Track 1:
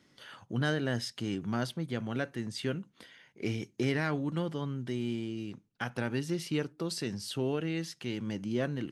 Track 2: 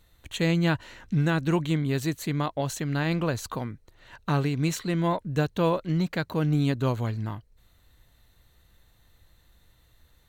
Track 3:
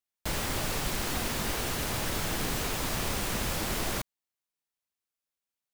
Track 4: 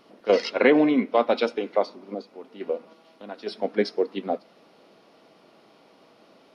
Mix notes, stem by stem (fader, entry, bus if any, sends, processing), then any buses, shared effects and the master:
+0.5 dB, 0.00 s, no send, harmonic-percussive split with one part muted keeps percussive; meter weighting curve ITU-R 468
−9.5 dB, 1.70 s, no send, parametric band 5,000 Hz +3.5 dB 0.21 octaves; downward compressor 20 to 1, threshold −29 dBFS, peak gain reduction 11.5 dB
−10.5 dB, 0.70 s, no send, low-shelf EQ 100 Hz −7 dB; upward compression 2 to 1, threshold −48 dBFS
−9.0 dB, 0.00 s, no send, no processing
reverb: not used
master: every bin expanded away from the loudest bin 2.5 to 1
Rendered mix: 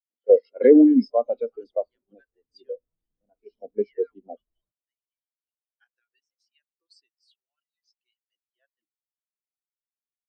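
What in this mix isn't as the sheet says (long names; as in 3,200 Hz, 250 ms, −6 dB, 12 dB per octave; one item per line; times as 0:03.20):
stem 2: muted
stem 3: missing low-shelf EQ 100 Hz −7 dB
stem 4 −9.0 dB → +2.0 dB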